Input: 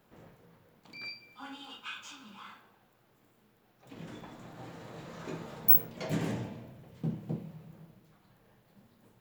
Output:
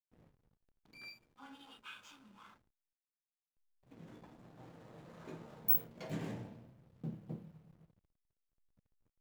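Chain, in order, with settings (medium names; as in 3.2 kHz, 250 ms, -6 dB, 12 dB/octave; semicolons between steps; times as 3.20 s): hysteresis with a dead band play -47.5 dBFS; trim -8.5 dB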